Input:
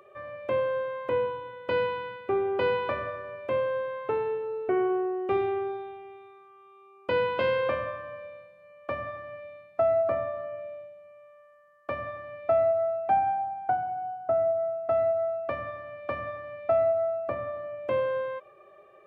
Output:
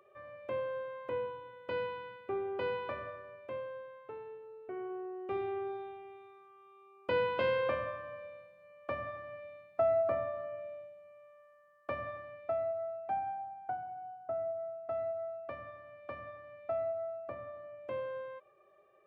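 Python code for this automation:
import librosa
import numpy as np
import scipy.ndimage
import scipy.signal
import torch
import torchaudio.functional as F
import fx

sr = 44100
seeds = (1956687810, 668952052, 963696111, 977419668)

y = fx.gain(x, sr, db=fx.line((3.11, -9.5), (4.05, -17.5), (4.62, -17.5), (5.84, -5.0), (12.16, -5.0), (12.57, -11.5)))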